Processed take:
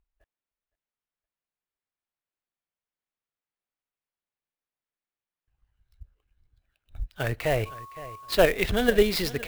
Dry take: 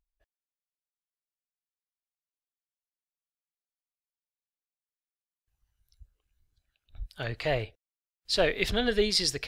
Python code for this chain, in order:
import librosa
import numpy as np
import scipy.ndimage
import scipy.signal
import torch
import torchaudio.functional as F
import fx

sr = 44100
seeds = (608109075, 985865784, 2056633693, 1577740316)

p1 = scipy.signal.sosfilt(scipy.signal.butter(2, 2800.0, 'lowpass', fs=sr, output='sos'), x)
p2 = fx.echo_feedback(p1, sr, ms=514, feedback_pct=35, wet_db=-19.0)
p3 = fx.dmg_tone(p2, sr, hz=1100.0, level_db=-46.0, at=(7.65, 8.33), fade=0.02)
p4 = fx.level_steps(p3, sr, step_db=12)
p5 = p3 + (p4 * librosa.db_to_amplitude(3.0))
y = fx.clock_jitter(p5, sr, seeds[0], jitter_ms=0.021)